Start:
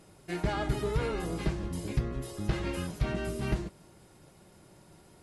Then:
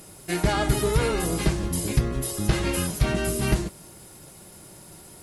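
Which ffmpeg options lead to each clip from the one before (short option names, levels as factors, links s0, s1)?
-af "aemphasis=mode=production:type=50fm,volume=2.51"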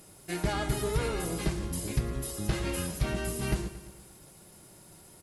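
-af "aecho=1:1:114|228|342|456|570|684:0.2|0.112|0.0626|0.035|0.0196|0.011,volume=0.422"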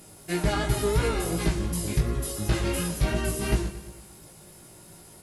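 -af "flanger=delay=17:depth=2.8:speed=2.8,volume=2.37"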